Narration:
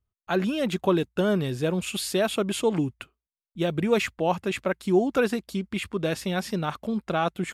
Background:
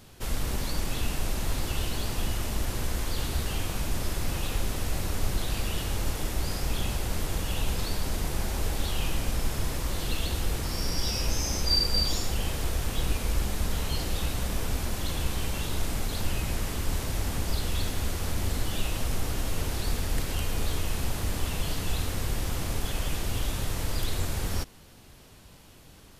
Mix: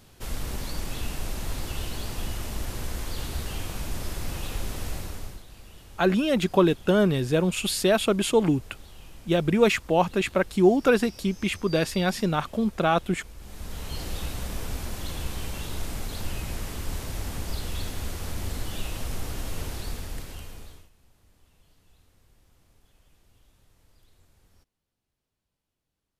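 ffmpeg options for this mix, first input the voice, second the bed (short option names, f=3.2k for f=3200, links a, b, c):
-filter_complex "[0:a]adelay=5700,volume=3dB[a];[1:a]volume=12.5dB,afade=t=out:st=4.88:d=0.55:silence=0.16788,afade=t=in:st=13.38:d=0.69:silence=0.177828,afade=t=out:st=19.64:d=1.26:silence=0.0354813[b];[a][b]amix=inputs=2:normalize=0"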